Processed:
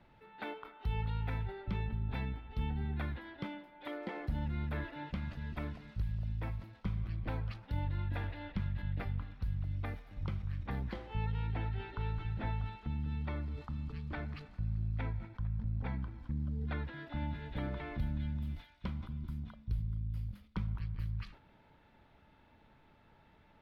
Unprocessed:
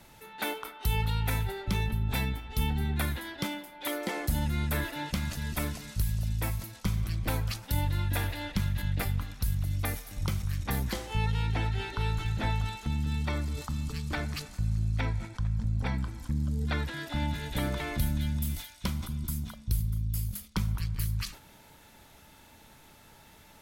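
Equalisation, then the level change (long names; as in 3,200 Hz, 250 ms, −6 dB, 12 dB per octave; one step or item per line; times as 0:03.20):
high-frequency loss of the air 380 metres
−6.5 dB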